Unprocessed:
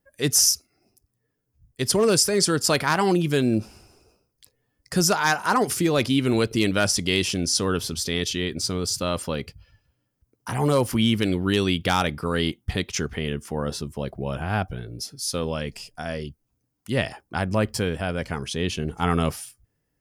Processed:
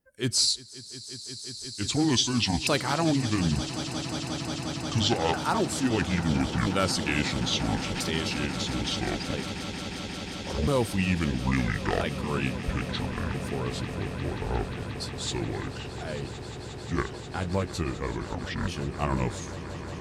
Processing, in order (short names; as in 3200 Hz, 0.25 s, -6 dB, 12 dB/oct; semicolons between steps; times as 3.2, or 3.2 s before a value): repeated pitch sweeps -11.5 st, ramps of 1.334 s; swelling echo 0.178 s, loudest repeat 8, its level -16.5 dB; gain -4 dB